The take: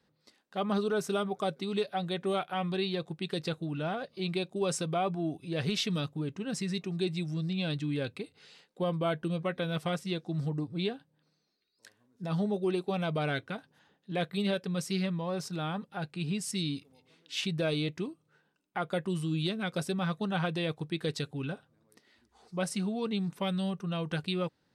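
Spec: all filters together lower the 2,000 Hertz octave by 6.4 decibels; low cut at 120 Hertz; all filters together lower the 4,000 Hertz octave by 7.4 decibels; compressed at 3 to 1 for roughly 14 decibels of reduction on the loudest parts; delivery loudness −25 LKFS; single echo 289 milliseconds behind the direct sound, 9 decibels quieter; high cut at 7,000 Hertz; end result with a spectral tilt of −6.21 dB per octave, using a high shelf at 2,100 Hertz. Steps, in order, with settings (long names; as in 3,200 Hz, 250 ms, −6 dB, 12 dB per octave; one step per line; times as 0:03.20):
high-pass filter 120 Hz
low-pass filter 7,000 Hz
parametric band 2,000 Hz −6 dB
high-shelf EQ 2,100 Hz −4 dB
parametric band 4,000 Hz −3 dB
downward compressor 3 to 1, threshold −47 dBFS
single-tap delay 289 ms −9 dB
level +21.5 dB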